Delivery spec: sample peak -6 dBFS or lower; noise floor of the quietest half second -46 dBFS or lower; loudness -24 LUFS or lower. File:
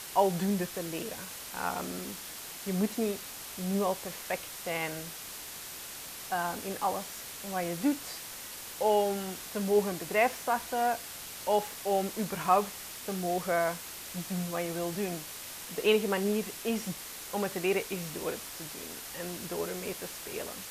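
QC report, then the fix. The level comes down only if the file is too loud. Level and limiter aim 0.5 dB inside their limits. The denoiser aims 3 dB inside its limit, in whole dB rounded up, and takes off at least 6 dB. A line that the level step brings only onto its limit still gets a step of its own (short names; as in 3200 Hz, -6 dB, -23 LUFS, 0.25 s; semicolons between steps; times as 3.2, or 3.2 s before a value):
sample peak -12.0 dBFS: OK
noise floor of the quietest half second -43 dBFS: fail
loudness -32.5 LUFS: OK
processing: denoiser 6 dB, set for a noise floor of -43 dBFS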